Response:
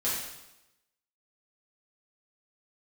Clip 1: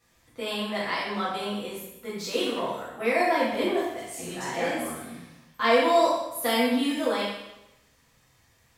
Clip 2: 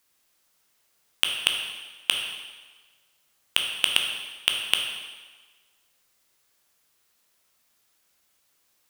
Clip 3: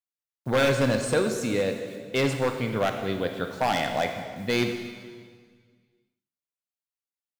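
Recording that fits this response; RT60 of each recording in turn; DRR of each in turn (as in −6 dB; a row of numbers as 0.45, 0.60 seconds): 1; 0.95, 1.4, 1.8 seconds; −9.0, 1.5, 5.0 decibels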